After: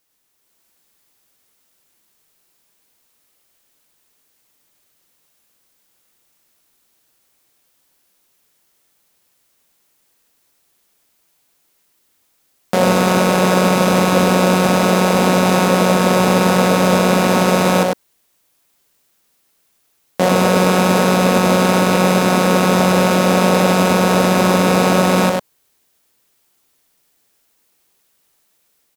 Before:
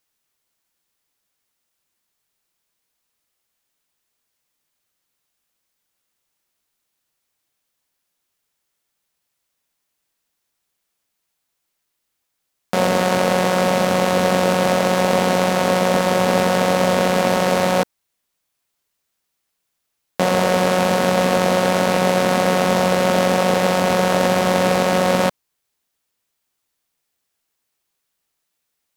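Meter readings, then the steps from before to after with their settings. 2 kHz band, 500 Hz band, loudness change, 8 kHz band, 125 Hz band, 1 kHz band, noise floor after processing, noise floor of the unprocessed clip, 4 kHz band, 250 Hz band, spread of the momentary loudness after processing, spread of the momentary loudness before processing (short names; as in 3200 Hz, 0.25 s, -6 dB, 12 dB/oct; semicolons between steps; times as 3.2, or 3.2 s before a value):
+3.0 dB, +2.0 dB, +3.5 dB, +4.5 dB, +6.5 dB, +2.5 dB, -63 dBFS, -76 dBFS, +2.5 dB, +6.5 dB, 2 LU, 1 LU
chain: limiter -13.5 dBFS, peak gain reduction 11.5 dB; bell 340 Hz +4 dB 2 oct; on a send: echo 99 ms -4 dB; on the sum: AGC gain up to 5.5 dB; high shelf 8300 Hz +4 dB; gain +3.5 dB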